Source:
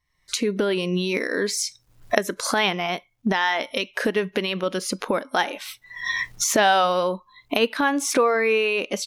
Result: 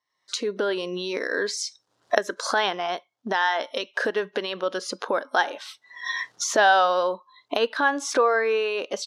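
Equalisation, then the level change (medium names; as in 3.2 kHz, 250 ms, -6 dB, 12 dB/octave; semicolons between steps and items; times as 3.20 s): dynamic bell 1.6 kHz, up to +6 dB, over -42 dBFS, Q 5.9; band-pass 430–5400 Hz; peaking EQ 2.3 kHz -10.5 dB 0.68 oct; +1.0 dB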